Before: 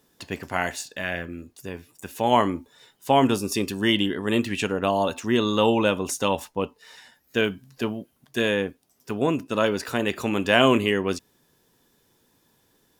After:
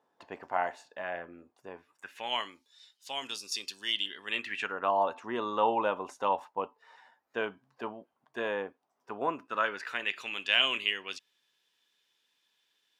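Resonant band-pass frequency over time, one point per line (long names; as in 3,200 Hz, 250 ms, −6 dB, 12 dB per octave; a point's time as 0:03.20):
resonant band-pass, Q 1.9
0:01.73 840 Hz
0:02.57 4,500 Hz
0:03.97 4,500 Hz
0:04.96 920 Hz
0:09.19 920 Hz
0:10.31 3,000 Hz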